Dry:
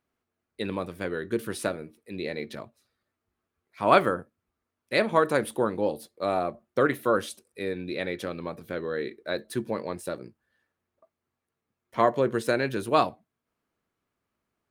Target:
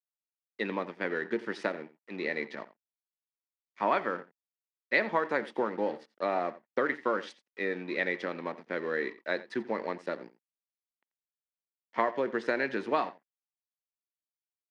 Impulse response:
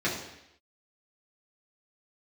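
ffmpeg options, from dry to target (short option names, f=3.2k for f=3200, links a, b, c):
-af "acompressor=threshold=-24dB:ratio=6,aeval=exprs='sgn(val(0))*max(abs(val(0))-0.00376,0)':c=same,highpass=f=190:w=0.5412,highpass=f=190:w=1.3066,equalizer=f=900:t=q:w=4:g=5,equalizer=f=1.9k:t=q:w=4:g=10,equalizer=f=3.9k:t=q:w=4:g=-4,lowpass=f=5.2k:w=0.5412,lowpass=f=5.2k:w=1.3066,aecho=1:1:87:0.126,volume=-1dB"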